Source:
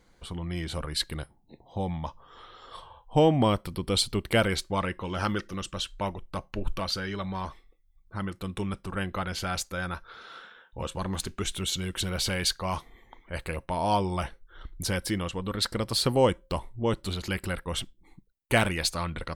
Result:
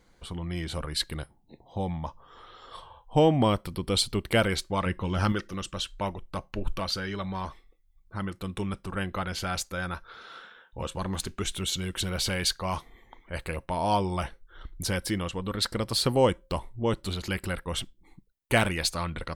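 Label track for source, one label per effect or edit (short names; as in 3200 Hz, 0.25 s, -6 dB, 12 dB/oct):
1.910000	2.470000	dynamic EQ 3400 Hz, up to -5 dB, over -57 dBFS, Q 0.97
4.860000	5.320000	tone controls bass +7 dB, treble +1 dB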